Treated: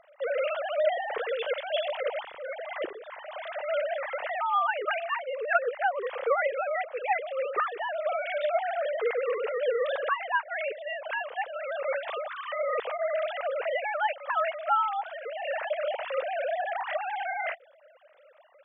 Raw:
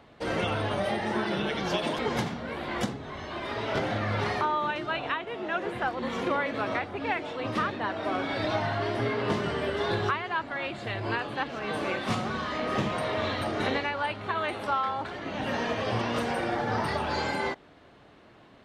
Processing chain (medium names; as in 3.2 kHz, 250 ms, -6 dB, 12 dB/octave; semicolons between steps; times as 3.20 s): formants replaced by sine waves; graphic EQ 250/500/1000 Hz -7/+5/-4 dB